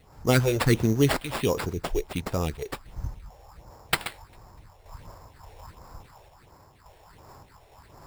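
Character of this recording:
phaser sweep stages 4, 1.4 Hz, lowest notch 200–4,000 Hz
sample-and-hold tremolo
aliases and images of a low sample rate 6,200 Hz, jitter 0%

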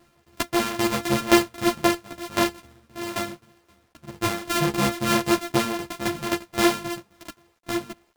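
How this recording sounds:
a buzz of ramps at a fixed pitch in blocks of 128 samples
tremolo saw down 3.8 Hz, depth 85%
a quantiser's noise floor 12 bits, dither none
a shimmering, thickened sound

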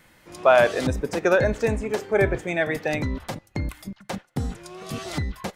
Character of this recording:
background noise floor −59 dBFS
spectral slope −5.0 dB per octave

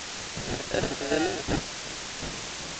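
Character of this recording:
aliases and images of a low sample rate 1,100 Hz, jitter 0%
tremolo saw down 2.7 Hz, depth 75%
a quantiser's noise floor 6 bits, dither triangular
G.722

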